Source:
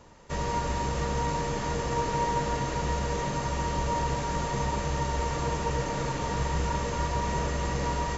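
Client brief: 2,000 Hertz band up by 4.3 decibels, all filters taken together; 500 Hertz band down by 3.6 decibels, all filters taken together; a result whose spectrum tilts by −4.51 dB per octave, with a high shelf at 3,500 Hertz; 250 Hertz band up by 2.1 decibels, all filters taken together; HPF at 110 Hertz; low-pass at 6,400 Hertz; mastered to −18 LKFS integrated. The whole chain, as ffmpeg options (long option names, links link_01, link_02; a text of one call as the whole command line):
ffmpeg -i in.wav -af "highpass=110,lowpass=6400,equalizer=frequency=250:width_type=o:gain=5,equalizer=frequency=500:width_type=o:gain=-5.5,equalizer=frequency=2000:width_type=o:gain=6.5,highshelf=frequency=3500:gain=-4.5,volume=12.5dB" out.wav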